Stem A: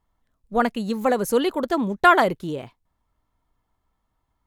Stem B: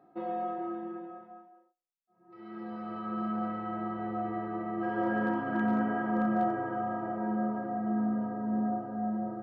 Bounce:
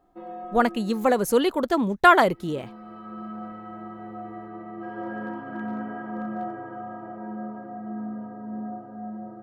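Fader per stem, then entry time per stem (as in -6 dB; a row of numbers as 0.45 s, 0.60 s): 0.0 dB, -3.5 dB; 0.00 s, 0.00 s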